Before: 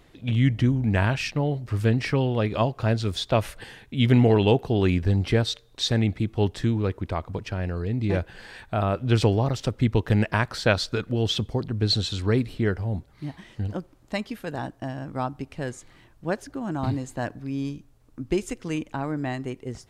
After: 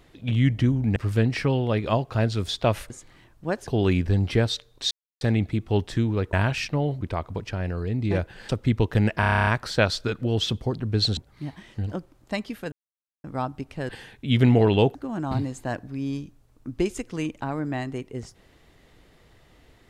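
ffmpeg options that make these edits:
ffmpeg -i in.wav -filter_complex "[0:a]asplit=22[link_01][link_02][link_03][link_04][link_05][link_06][link_07][link_08][link_09][link_10][link_11][link_12][link_13][link_14][link_15][link_16][link_17][link_18][link_19][link_20][link_21][link_22];[link_01]atrim=end=0.962[link_23];[link_02]atrim=start=1.638:end=3.582[link_24];[link_03]atrim=start=15.698:end=16.472[link_25];[link_04]atrim=start=4.638:end=5.88,asetpts=PTS-STARTPTS,afade=type=out:start_time=1.238:duration=0.004:curve=hsin,apad=pad_dur=0.3[link_26];[link_05]atrim=start=5.88:end=7.002,asetpts=PTS-STARTPTS,afade=type=in:duration=0.004:curve=hsin[link_27];[link_06]atrim=start=0.958:end=1.642[link_28];[link_07]atrim=start=6.998:end=8.482[link_29];[link_08]atrim=start=9.638:end=10.382[link_30];[link_09]atrim=start=10.348:end=10.382[link_31];[link_10]atrim=start=10.348:end=10.382[link_32];[link_11]atrim=start=10.348:end=10.382[link_33];[link_12]atrim=start=10.348:end=10.382[link_34];[link_13]atrim=start=10.348:end=10.382[link_35];[link_14]atrim=start=10.348:end=10.382[link_36];[link_15]atrim=start=10.348:end=10.382[link_37];[link_16]atrim=start=10.348:end=10.382[link_38];[link_17]atrim=start=10.348:end=12.052[link_39];[link_18]atrim=start=12.978:end=14.53,asetpts=PTS-STARTPTS,afade=type=out:start_time=1.548:duration=0.004:curve=hsin[link_40];[link_19]atrim=start=14.53:end=15.05,asetpts=PTS-STARTPTS,volume=0[link_41];[link_20]atrim=start=15.05:end=15.702,asetpts=PTS-STARTPTS,afade=type=in:duration=0.004:curve=hsin[link_42];[link_21]atrim=start=3.578:end=4.642[link_43];[link_22]atrim=start=16.468[link_44];[link_23][link_24]acrossfade=duration=0.004:curve1=hsin:curve2=hsin[link_45];[link_45][link_25]acrossfade=duration=0.004:curve1=hsin:curve2=hsin[link_46];[link_26][link_27]concat=n=2:v=0:a=1[link_47];[link_46][link_47]acrossfade=duration=0.004:curve1=hsin:curve2=hsin[link_48];[link_48][link_28]acrossfade=duration=0.004:curve1=hsin:curve2=hsin[link_49];[link_49][link_29]acrossfade=duration=0.004:curve1=hsin:curve2=hsin[link_50];[link_50][link_30]acrossfade=duration=0.004:curve1=hsin:curve2=hsin[link_51];[link_51][link_31]acrossfade=duration=0.004:curve1=hsin:curve2=hsin[link_52];[link_52][link_32]acrossfade=duration=0.004:curve1=hsin:curve2=hsin[link_53];[link_53][link_33]acrossfade=duration=0.004:curve1=hsin:curve2=hsin[link_54];[link_54][link_34]acrossfade=duration=0.004:curve1=hsin:curve2=hsin[link_55];[link_55][link_35]acrossfade=duration=0.004:curve1=hsin:curve2=hsin[link_56];[link_56][link_36]acrossfade=duration=0.004:curve1=hsin:curve2=hsin[link_57];[link_57][link_37]acrossfade=duration=0.004:curve1=hsin:curve2=hsin[link_58];[link_58][link_38]acrossfade=duration=0.004:curve1=hsin:curve2=hsin[link_59];[link_59][link_39]acrossfade=duration=0.004:curve1=hsin:curve2=hsin[link_60];[link_40][link_41][link_42]concat=n=3:v=0:a=1[link_61];[link_60][link_61]acrossfade=duration=0.004:curve1=hsin:curve2=hsin[link_62];[link_62][link_43]acrossfade=duration=0.004:curve1=hsin:curve2=hsin[link_63];[link_63][link_44]acrossfade=duration=0.004:curve1=hsin:curve2=hsin" out.wav

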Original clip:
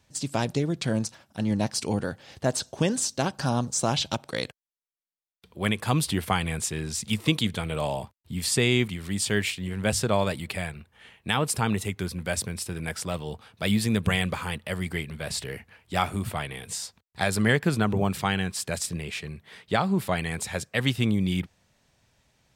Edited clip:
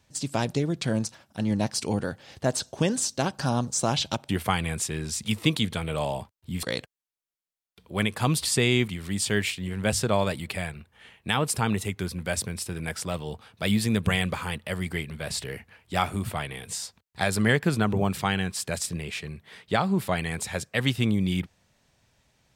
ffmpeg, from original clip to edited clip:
ffmpeg -i in.wav -filter_complex "[0:a]asplit=4[link_01][link_02][link_03][link_04];[link_01]atrim=end=4.292[link_05];[link_02]atrim=start=6.108:end=8.452[link_06];[link_03]atrim=start=4.288:end=6.112[link_07];[link_04]atrim=start=8.448[link_08];[link_05][link_06]acrossfade=duration=0.004:curve1=hsin:curve2=hsin[link_09];[link_09][link_07]acrossfade=duration=0.004:curve1=hsin:curve2=hsin[link_10];[link_10][link_08]acrossfade=duration=0.004:curve1=hsin:curve2=hsin" out.wav

